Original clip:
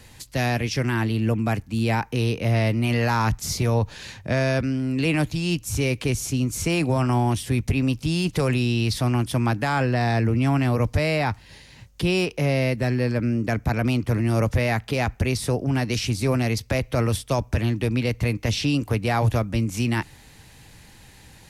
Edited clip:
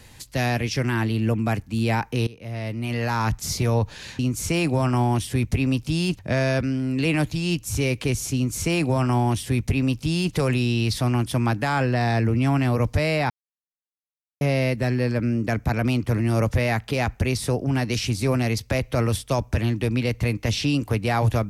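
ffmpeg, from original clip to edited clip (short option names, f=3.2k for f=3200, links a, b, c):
-filter_complex "[0:a]asplit=6[a][b][c][d][e][f];[a]atrim=end=2.27,asetpts=PTS-STARTPTS,afade=t=out:st=2.266:d=0.004:c=hsin:silence=0.0891251[g];[b]atrim=start=2.27:end=4.192,asetpts=PTS-STARTPTS,afade=t=in:d=1.18:silence=0.0891251[h];[c]atrim=start=6.348:end=8.352[i];[d]atrim=start=4.188:end=11.3,asetpts=PTS-STARTPTS,afade=t=out:st=7.108:d=0.004:c=hsin[j];[e]atrim=start=11.3:end=12.41,asetpts=PTS-STARTPTS,volume=0[k];[f]atrim=start=12.41,asetpts=PTS-STARTPTS,afade=t=in:d=0.004:c=hsin[l];[g][h]concat=n=2:v=0:a=1[m];[m][i]acrossfade=d=0.004:c1=hsin:c2=hsin[n];[j][k][l]concat=n=3:v=0:a=1[o];[n][o]acrossfade=d=0.004:c1=hsin:c2=hsin"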